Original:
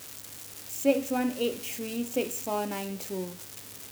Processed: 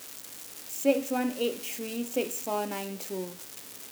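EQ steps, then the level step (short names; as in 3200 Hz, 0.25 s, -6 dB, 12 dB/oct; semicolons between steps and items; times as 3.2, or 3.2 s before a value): HPF 190 Hz 12 dB/oct; 0.0 dB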